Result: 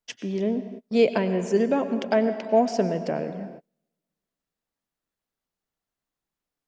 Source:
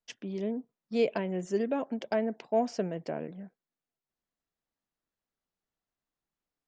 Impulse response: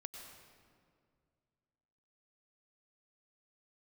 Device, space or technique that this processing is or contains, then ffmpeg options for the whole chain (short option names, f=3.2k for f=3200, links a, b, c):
keyed gated reverb: -filter_complex "[0:a]asplit=3[a][b][c];[1:a]atrim=start_sample=2205[d];[b][d]afir=irnorm=-1:irlink=0[e];[c]apad=whole_len=294524[f];[e][f]sidechaingate=range=-35dB:threshold=-59dB:ratio=16:detection=peak,volume=3.5dB[g];[a][g]amix=inputs=2:normalize=0,volume=2.5dB"